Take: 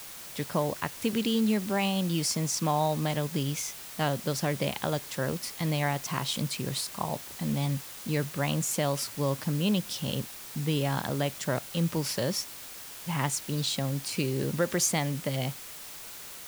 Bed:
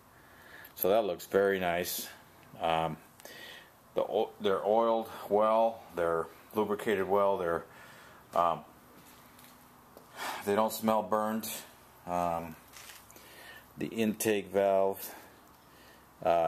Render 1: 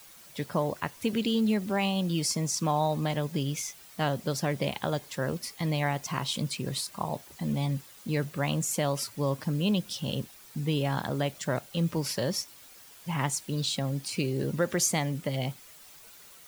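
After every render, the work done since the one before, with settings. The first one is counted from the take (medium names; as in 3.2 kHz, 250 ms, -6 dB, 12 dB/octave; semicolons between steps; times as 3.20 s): noise reduction 10 dB, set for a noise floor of -44 dBFS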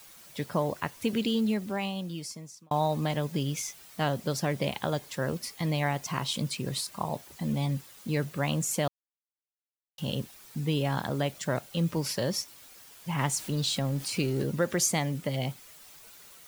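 1.23–2.71 s: fade out; 8.88–9.98 s: mute; 13.18–14.43 s: jump at every zero crossing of -40.5 dBFS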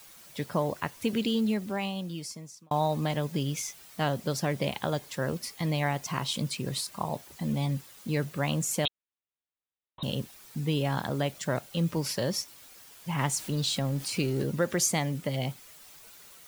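8.85–10.03 s: frequency inversion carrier 3.9 kHz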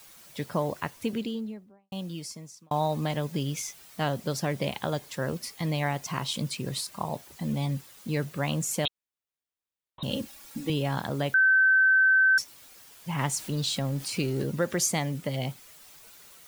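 0.82–1.92 s: studio fade out; 10.10–10.70 s: comb 3.6 ms, depth 97%; 11.34–12.38 s: bleep 1.54 kHz -17 dBFS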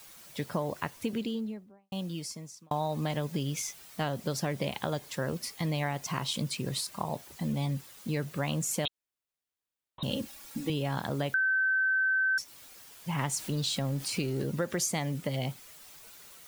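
compression 3:1, threshold -28 dBFS, peak gain reduction 7 dB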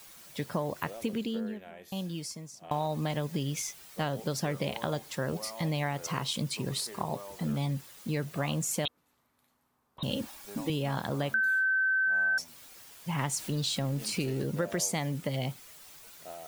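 add bed -18 dB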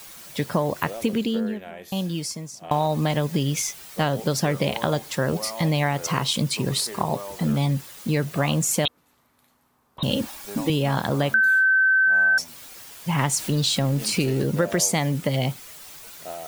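trim +9 dB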